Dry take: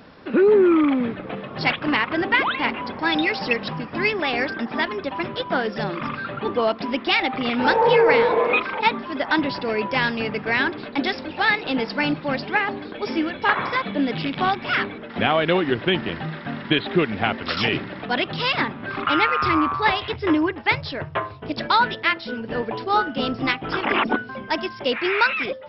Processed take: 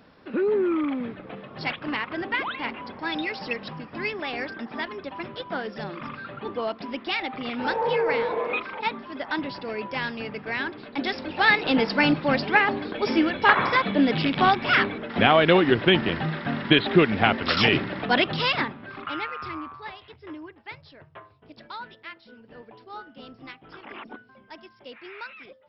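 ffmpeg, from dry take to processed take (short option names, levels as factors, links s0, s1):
-af "volume=1.26,afade=t=in:st=10.86:d=0.8:silence=0.316228,afade=t=out:st=18.19:d=0.67:silence=0.251189,afade=t=out:st=18.86:d=1.05:silence=0.316228"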